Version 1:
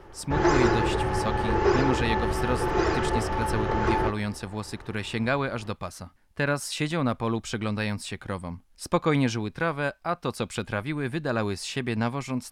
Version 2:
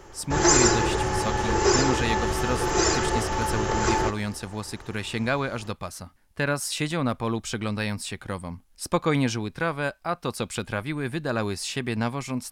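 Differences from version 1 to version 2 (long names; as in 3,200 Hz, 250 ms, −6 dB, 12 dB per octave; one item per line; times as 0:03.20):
background: remove high-frequency loss of the air 240 metres
master: add high-shelf EQ 5,800 Hz +6.5 dB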